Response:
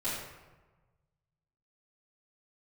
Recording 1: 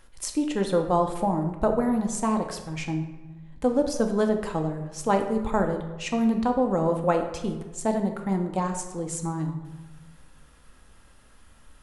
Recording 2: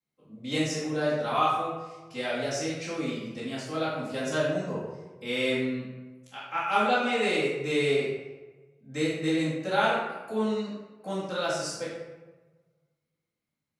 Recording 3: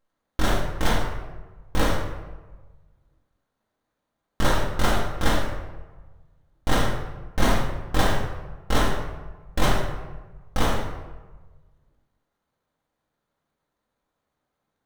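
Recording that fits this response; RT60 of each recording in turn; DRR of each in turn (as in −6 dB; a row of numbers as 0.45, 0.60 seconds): 2; 1.3, 1.2, 1.2 seconds; 4.0, −13.0, −3.5 decibels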